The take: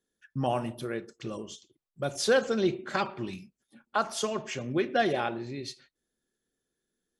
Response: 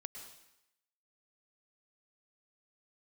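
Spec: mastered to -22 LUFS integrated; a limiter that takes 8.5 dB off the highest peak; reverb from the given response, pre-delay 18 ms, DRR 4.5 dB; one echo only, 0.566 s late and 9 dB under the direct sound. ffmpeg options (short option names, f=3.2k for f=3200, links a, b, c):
-filter_complex "[0:a]alimiter=limit=-21.5dB:level=0:latency=1,aecho=1:1:566:0.355,asplit=2[a][b];[1:a]atrim=start_sample=2205,adelay=18[c];[b][c]afir=irnorm=-1:irlink=0,volume=-1dB[d];[a][d]amix=inputs=2:normalize=0,volume=10.5dB"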